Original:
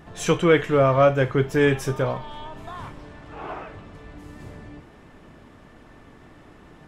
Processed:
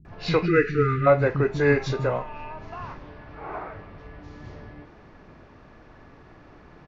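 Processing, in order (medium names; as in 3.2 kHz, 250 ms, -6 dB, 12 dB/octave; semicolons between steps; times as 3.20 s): knee-point frequency compression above 1.6 kHz 1.5:1; spectral selection erased 0.41–1.02 s, 480–1200 Hz; bands offset in time lows, highs 50 ms, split 230 Hz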